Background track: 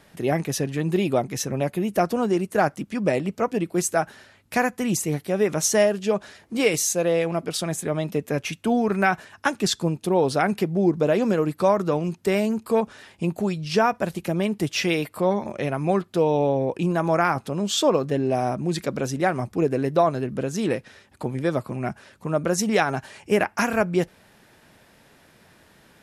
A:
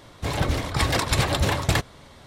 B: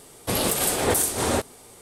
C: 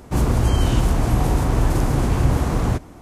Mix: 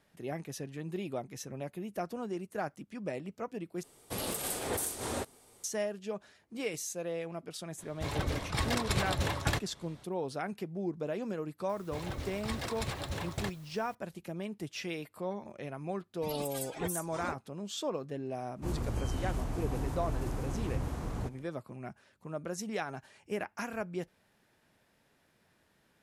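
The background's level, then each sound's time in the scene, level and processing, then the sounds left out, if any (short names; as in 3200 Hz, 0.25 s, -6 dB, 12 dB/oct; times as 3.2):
background track -15.5 dB
3.83 replace with B -12.5 dB
7.78 add A -9.5 dB
11.69 add A -15.5 dB + requantised 8-bit, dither triangular
15.94 add B -11 dB + per-bin expansion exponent 3
18.51 add C -17 dB, fades 0.10 s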